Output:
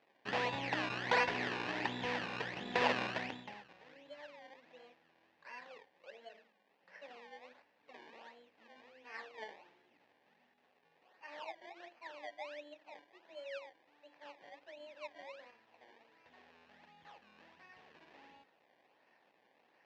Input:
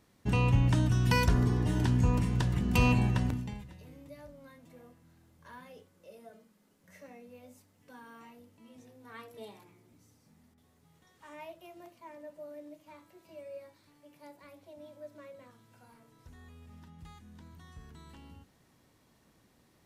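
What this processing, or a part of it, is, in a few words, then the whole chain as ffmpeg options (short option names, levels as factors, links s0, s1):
circuit-bent sampling toy: -af "acrusher=samples=23:mix=1:aa=0.000001:lfo=1:lforange=23:lforate=1.4,highpass=460,equalizer=f=530:t=q:w=4:g=3,equalizer=f=810:t=q:w=4:g=6,equalizer=f=1300:t=q:w=4:g=-5,equalizer=f=1800:t=q:w=4:g=8,equalizer=f=2600:t=q:w=4:g=6,lowpass=f=4800:w=0.5412,lowpass=f=4800:w=1.3066,volume=0.75"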